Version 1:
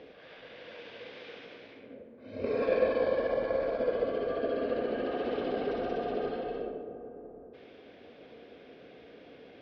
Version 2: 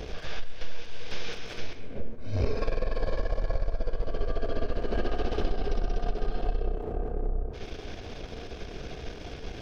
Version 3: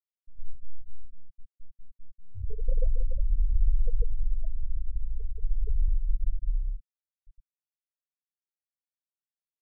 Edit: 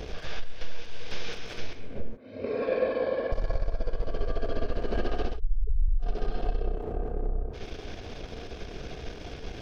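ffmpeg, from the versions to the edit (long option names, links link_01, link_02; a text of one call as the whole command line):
ffmpeg -i take0.wav -i take1.wav -i take2.wav -filter_complex "[1:a]asplit=3[link_01][link_02][link_03];[link_01]atrim=end=2.172[link_04];[0:a]atrim=start=2.168:end=3.322[link_05];[link_02]atrim=start=3.318:end=5.4[link_06];[2:a]atrim=start=5.24:end=6.15[link_07];[link_03]atrim=start=5.99[link_08];[link_04][link_05]acrossfade=duration=0.004:curve1=hsin:curve2=hsin[link_09];[link_09][link_06]acrossfade=duration=0.004:curve1=hsin:curve2=hsin[link_10];[link_10][link_07]acrossfade=duration=0.16:curve1=tri:curve2=tri[link_11];[link_11][link_08]acrossfade=duration=0.16:curve1=tri:curve2=tri" out.wav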